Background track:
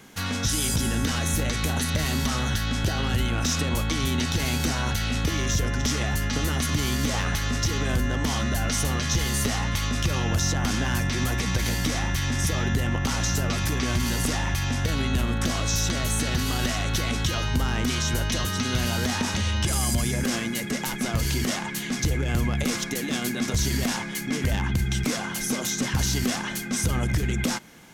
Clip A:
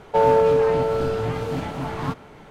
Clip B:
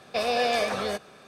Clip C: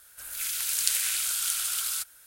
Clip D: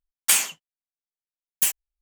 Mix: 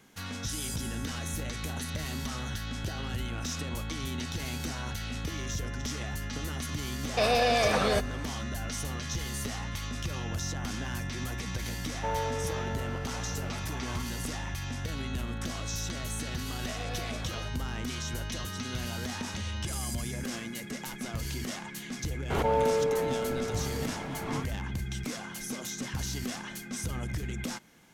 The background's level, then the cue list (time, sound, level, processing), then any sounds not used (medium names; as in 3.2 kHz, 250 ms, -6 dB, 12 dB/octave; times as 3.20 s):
background track -10 dB
7.03 s: add B -16 dB + loudness maximiser +20 dB
11.89 s: add A -12 dB + high-pass 650 Hz
16.52 s: add B -17 dB
22.30 s: add A -10 dB + swell ahead of each attack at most 33 dB/s
not used: C, D